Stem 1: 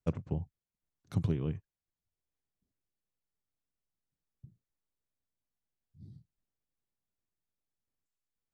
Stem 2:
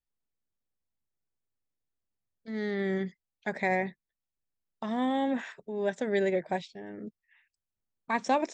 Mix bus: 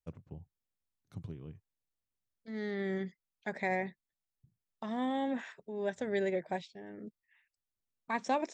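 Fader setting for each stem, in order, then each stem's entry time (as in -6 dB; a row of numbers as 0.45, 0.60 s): -13.0, -5.0 dB; 0.00, 0.00 s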